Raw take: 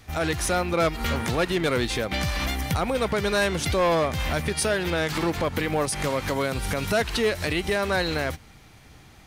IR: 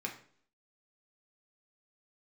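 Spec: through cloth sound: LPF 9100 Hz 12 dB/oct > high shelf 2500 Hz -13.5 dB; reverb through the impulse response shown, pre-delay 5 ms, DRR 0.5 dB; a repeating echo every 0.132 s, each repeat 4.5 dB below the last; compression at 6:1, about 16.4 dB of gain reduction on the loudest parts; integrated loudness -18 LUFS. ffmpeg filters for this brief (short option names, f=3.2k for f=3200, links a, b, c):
-filter_complex "[0:a]acompressor=threshold=-38dB:ratio=6,aecho=1:1:132|264|396|528|660|792|924|1056|1188:0.596|0.357|0.214|0.129|0.0772|0.0463|0.0278|0.0167|0.01,asplit=2[a][b];[1:a]atrim=start_sample=2205,adelay=5[c];[b][c]afir=irnorm=-1:irlink=0,volume=-2dB[d];[a][d]amix=inputs=2:normalize=0,lowpass=9.1k,highshelf=f=2.5k:g=-13.5,volume=19.5dB"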